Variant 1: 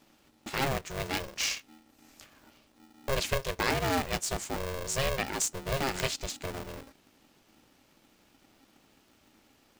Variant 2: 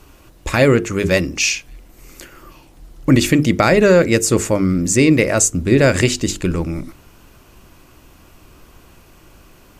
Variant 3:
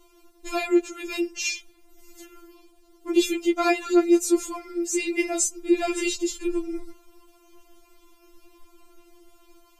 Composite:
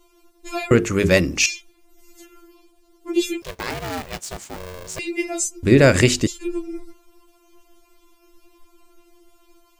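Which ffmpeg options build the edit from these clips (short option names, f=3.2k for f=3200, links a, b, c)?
-filter_complex "[1:a]asplit=2[a][b];[2:a]asplit=4[c][d][e][f];[c]atrim=end=0.712[g];[a]atrim=start=0.708:end=1.462[h];[d]atrim=start=1.458:end=3.422[i];[0:a]atrim=start=3.418:end=4.992[j];[e]atrim=start=4.988:end=5.632[k];[b]atrim=start=5.628:end=6.272[l];[f]atrim=start=6.268[m];[g][h]acrossfade=d=0.004:c1=hsin:c2=hsin[n];[n][i]acrossfade=d=0.004:c1=hsin:c2=hsin[o];[o][j]acrossfade=d=0.004:c1=hsin:c2=hsin[p];[p][k]acrossfade=d=0.004:c1=hsin:c2=hsin[q];[q][l]acrossfade=d=0.004:c1=hsin:c2=hsin[r];[r][m]acrossfade=d=0.004:c1=hsin:c2=hsin"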